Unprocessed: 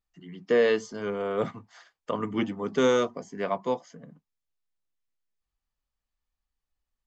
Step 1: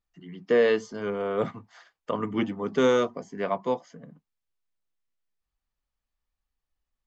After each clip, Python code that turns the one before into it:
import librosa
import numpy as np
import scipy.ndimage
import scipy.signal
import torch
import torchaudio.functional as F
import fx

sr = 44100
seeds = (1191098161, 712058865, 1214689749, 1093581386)

y = fx.high_shelf(x, sr, hz=6600.0, db=-8.5)
y = y * librosa.db_to_amplitude(1.0)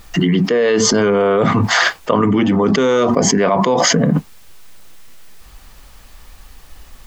y = fx.env_flatten(x, sr, amount_pct=100)
y = y * librosa.db_to_amplitude(4.0)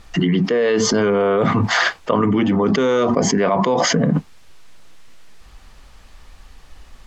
y = fx.air_absorb(x, sr, metres=51.0)
y = y * librosa.db_to_amplitude(-2.5)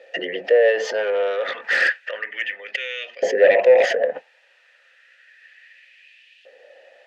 y = fx.filter_lfo_highpass(x, sr, shape='saw_up', hz=0.31, low_hz=500.0, high_hz=3000.0, q=3.0)
y = fx.fold_sine(y, sr, drive_db=11, ceiling_db=1.0)
y = fx.vowel_filter(y, sr, vowel='e')
y = y * librosa.db_to_amplitude(-3.5)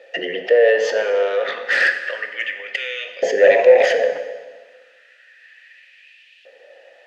y = fx.rev_plate(x, sr, seeds[0], rt60_s=1.5, hf_ratio=0.9, predelay_ms=0, drr_db=7.0)
y = y * librosa.db_to_amplitude(1.5)